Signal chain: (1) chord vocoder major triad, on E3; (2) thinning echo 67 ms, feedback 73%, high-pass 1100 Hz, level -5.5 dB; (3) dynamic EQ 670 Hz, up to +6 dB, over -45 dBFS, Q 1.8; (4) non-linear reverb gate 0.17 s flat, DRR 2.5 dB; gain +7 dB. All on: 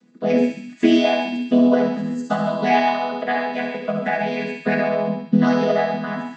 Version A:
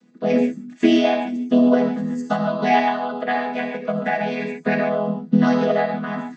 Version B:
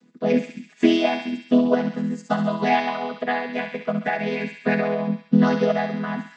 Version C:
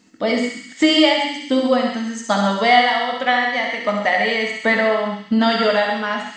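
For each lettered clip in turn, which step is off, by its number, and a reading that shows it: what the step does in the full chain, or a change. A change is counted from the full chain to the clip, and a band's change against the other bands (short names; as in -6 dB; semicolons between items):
2, 4 kHz band -1.5 dB; 4, crest factor change +1.5 dB; 1, 4 kHz band +9.0 dB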